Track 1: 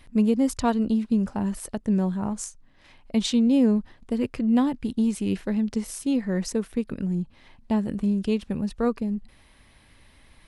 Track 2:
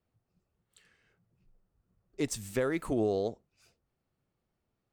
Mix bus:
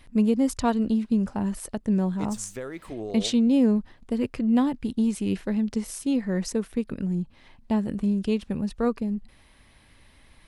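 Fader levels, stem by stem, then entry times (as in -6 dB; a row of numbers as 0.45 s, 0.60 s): -0.5 dB, -5.5 dB; 0.00 s, 0.00 s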